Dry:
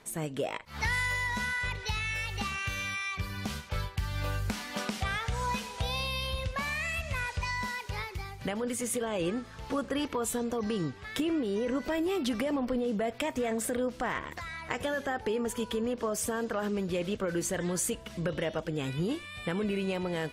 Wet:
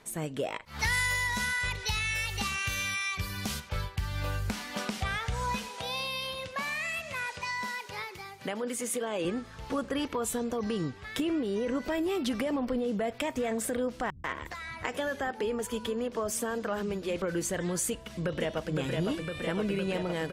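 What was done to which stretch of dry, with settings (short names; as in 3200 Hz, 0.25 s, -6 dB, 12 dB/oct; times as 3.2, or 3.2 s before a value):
0.79–3.6 high shelf 4200 Hz +9.5 dB
5.68–9.25 HPF 220 Hz
14.1–17.22 bands offset in time lows, highs 0.14 s, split 170 Hz
17.89–18.71 echo throw 0.51 s, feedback 80%, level -3.5 dB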